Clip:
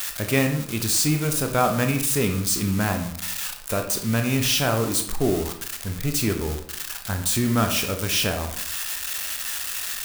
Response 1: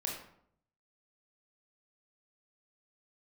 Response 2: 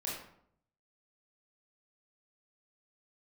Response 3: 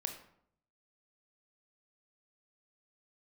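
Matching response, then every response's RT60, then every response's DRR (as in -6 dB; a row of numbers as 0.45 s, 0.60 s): 3; 0.65 s, 0.65 s, 0.65 s; -1.5 dB, -5.5 dB, 5.0 dB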